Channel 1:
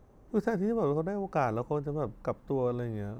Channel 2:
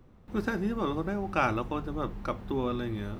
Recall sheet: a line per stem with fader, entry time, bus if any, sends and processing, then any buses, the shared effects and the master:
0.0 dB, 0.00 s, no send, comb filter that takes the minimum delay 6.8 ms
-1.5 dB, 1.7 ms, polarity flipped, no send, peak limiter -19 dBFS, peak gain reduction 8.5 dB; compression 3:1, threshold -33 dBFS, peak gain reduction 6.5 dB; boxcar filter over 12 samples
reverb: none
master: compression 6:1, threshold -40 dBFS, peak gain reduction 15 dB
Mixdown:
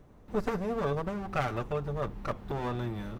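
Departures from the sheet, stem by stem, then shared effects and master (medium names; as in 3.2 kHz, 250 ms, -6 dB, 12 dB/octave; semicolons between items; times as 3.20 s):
stem 2: missing boxcar filter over 12 samples; master: missing compression 6:1, threshold -40 dBFS, peak gain reduction 15 dB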